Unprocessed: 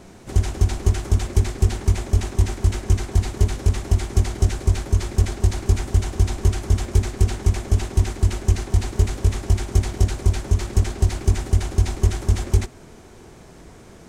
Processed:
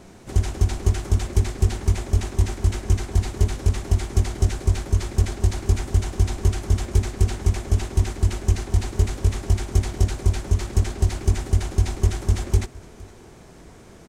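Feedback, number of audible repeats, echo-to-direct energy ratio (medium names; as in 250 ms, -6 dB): no regular repeats, 1, -22.5 dB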